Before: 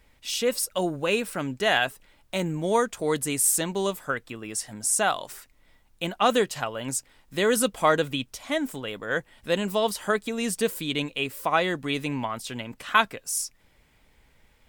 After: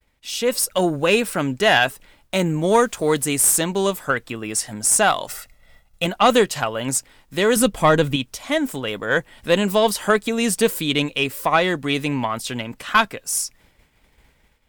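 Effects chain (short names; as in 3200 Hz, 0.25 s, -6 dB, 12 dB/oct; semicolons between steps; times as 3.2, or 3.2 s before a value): one diode to ground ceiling -10.5 dBFS; expander -55 dBFS; 5.27–6.06 comb 1.5 ms, depth 65%; 7.56–8.16 low shelf 210 Hz +10 dB; AGC gain up to 8.5 dB; 2.69–3.64 added noise white -56 dBFS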